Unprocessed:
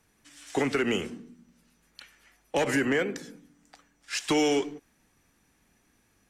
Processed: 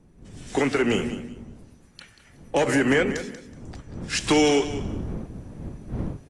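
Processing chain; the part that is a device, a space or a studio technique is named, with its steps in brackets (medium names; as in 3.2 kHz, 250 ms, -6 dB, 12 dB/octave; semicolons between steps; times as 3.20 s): 0.72–2.81 s: peaking EQ 3.3 kHz -3.5 dB 2.9 oct; feedback delay 186 ms, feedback 22%, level -12 dB; smartphone video outdoors (wind noise 200 Hz -39 dBFS; level rider gain up to 11.5 dB; trim -5.5 dB; AAC 48 kbps 24 kHz)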